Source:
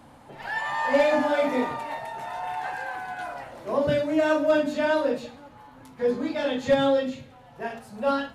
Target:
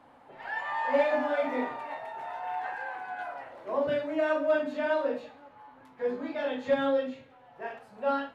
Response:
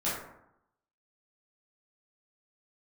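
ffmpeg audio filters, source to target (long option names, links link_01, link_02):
-filter_complex "[0:a]bass=frequency=250:gain=-12,treble=frequency=4000:gain=-14,asplit=2[link_01][link_02];[1:a]atrim=start_sample=2205,atrim=end_sample=3528,asetrate=57330,aresample=44100[link_03];[link_02][link_03]afir=irnorm=-1:irlink=0,volume=-11.5dB[link_04];[link_01][link_04]amix=inputs=2:normalize=0,volume=-5.5dB"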